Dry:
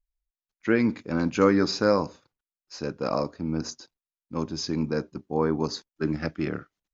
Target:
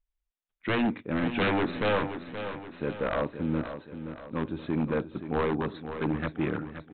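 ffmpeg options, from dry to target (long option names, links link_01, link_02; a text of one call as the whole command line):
ffmpeg -i in.wav -af "aresample=8000,aeval=exprs='0.1*(abs(mod(val(0)/0.1+3,4)-2)-1)':channel_layout=same,aresample=44100,aecho=1:1:524|1048|1572|2096|2620:0.316|0.152|0.0729|0.035|0.0168" out.wav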